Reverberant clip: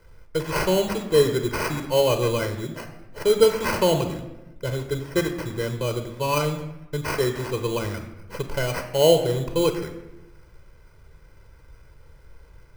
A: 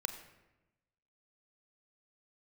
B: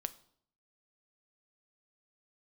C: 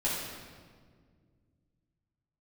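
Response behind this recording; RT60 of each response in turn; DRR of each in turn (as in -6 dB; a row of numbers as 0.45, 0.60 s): A; 1.0, 0.65, 1.8 s; 7.0, 11.5, -8.0 dB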